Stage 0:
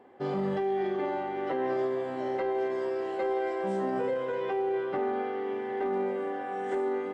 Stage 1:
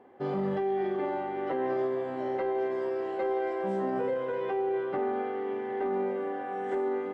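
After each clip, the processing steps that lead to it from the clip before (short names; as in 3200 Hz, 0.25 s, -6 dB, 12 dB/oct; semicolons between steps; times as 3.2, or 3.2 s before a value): high shelf 4000 Hz -9.5 dB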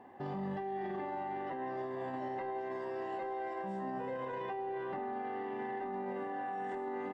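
comb 1.1 ms, depth 53%; limiter -33 dBFS, peak gain reduction 11.5 dB; gain +1 dB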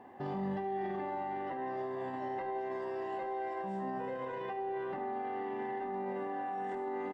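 vocal rider 2 s; echo 72 ms -12 dB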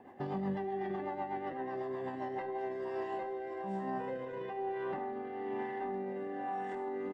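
rotary speaker horn 8 Hz, later 1.1 Hz, at 2.03; gain +2 dB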